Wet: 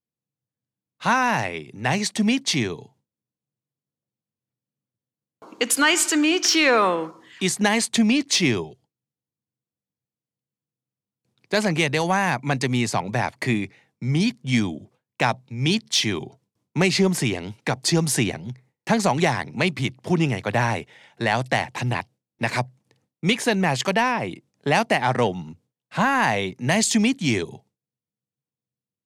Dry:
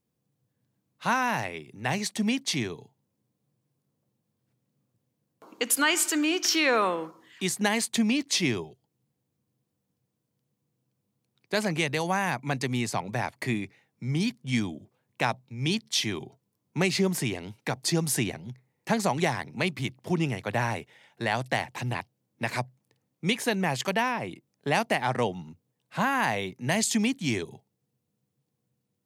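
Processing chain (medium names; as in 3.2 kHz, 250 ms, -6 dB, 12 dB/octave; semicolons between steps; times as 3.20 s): low-pass 9.6 kHz 12 dB/octave; gate with hold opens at -60 dBFS; in parallel at -4 dB: saturation -19.5 dBFS, distortion -15 dB; on the sum: trim +2.5 dB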